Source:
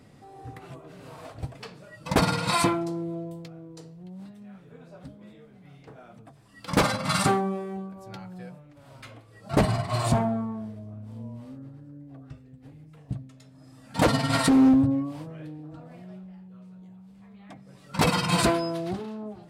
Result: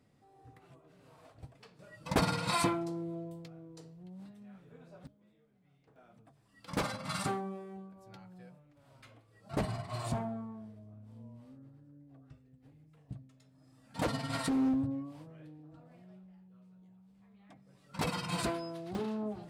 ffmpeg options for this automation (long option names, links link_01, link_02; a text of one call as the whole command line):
ffmpeg -i in.wav -af "asetnsamples=nb_out_samples=441:pad=0,asendcmd='1.79 volume volume -7dB;5.07 volume volume -19dB;5.96 volume volume -12dB;18.95 volume volume 0dB',volume=-15.5dB" out.wav